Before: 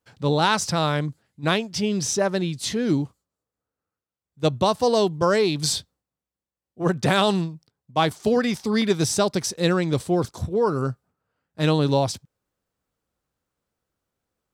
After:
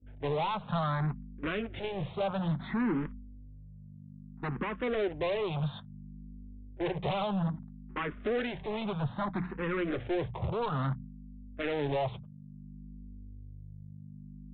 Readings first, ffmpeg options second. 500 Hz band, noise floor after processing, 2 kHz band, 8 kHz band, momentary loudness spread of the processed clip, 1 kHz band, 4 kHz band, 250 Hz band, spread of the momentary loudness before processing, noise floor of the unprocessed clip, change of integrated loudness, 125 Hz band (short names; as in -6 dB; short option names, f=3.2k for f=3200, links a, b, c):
-11.0 dB, -49 dBFS, -9.5 dB, under -40 dB, 18 LU, -10.0 dB, -16.5 dB, -10.0 dB, 8 LU, under -85 dBFS, -10.5 dB, -8.5 dB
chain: -filter_complex "[0:a]acrossover=split=110|840[a][b][c];[c]dynaudnorm=f=200:g=3:m=6dB[d];[a][b][d]amix=inputs=3:normalize=0,acrusher=bits=6:dc=4:mix=0:aa=0.000001,aeval=exprs='val(0)+0.0126*(sin(2*PI*50*n/s)+sin(2*PI*2*50*n/s)/2+sin(2*PI*3*50*n/s)/3+sin(2*PI*4*50*n/s)/4+sin(2*PI*5*50*n/s)/5)':c=same,highpass=f=59:w=0.5412,highpass=f=59:w=1.3066,bandreject=f=60:t=h:w=6,bandreject=f=120:t=h:w=6,bandreject=f=180:t=h:w=6,flanger=delay=4.6:depth=1.1:regen=-56:speed=0.26:shape=sinusoidal,acompressor=threshold=-25dB:ratio=6,lowpass=1.6k,agate=range=-33dB:threshold=-43dB:ratio=3:detection=peak,aresample=8000,asoftclip=type=hard:threshold=-32.5dB,aresample=44100,asplit=2[e][f];[f]afreqshift=0.6[g];[e][g]amix=inputs=2:normalize=1,volume=6.5dB"